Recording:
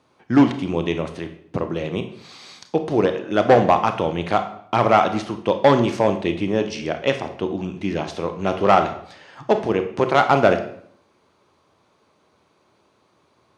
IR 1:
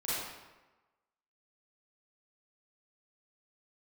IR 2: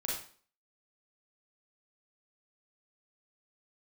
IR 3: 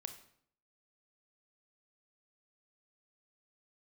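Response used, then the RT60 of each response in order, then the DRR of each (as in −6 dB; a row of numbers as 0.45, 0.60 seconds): 3; 1.2, 0.45, 0.65 seconds; −11.5, −4.5, 7.5 decibels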